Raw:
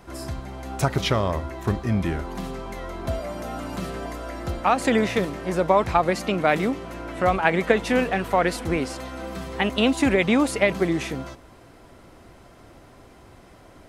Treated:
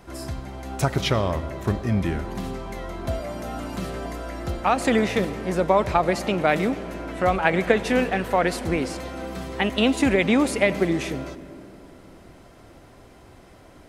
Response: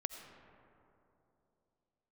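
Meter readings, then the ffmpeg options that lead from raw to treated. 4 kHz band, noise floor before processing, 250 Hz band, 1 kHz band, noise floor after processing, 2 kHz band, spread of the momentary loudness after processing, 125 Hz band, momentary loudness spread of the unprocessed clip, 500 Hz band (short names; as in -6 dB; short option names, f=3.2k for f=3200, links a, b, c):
0.0 dB, -50 dBFS, +0.5 dB, -0.5 dB, -49 dBFS, 0.0 dB, 13 LU, +0.5 dB, 14 LU, 0.0 dB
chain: -filter_complex "[0:a]asplit=2[a][b];[b]equalizer=f=1.1k:w=2.3:g=-6[c];[1:a]atrim=start_sample=2205,asetrate=43659,aresample=44100[d];[c][d]afir=irnorm=-1:irlink=0,volume=-2.5dB[e];[a][e]amix=inputs=2:normalize=0,volume=-4dB"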